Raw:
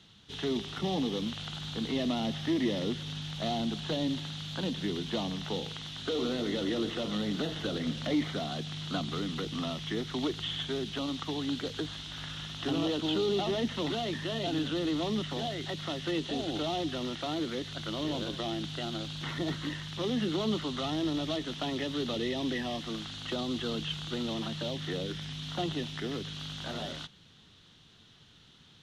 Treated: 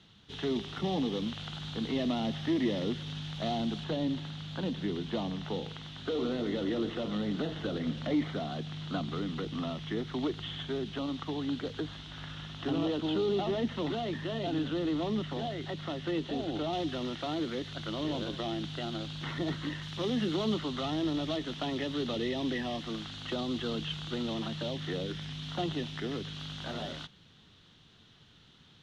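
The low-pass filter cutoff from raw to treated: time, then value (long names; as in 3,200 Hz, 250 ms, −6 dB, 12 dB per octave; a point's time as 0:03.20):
low-pass filter 6 dB per octave
3,700 Hz
from 0:03.84 2,000 Hz
from 0:16.73 3,800 Hz
from 0:19.82 7,000 Hz
from 0:20.54 4,400 Hz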